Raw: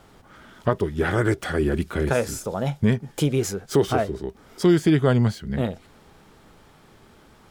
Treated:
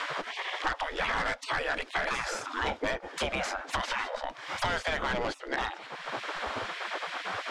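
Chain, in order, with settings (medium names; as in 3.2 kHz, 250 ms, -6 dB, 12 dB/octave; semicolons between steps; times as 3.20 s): RIAA curve playback; spectral gate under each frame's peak -30 dB weak; in parallel at -2 dB: peak limiter -27.5 dBFS, peak gain reduction 9.5 dB; on the sum: hard clipper -30.5 dBFS, distortion -9 dB; distance through air 70 m; three bands compressed up and down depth 100%; trim +6 dB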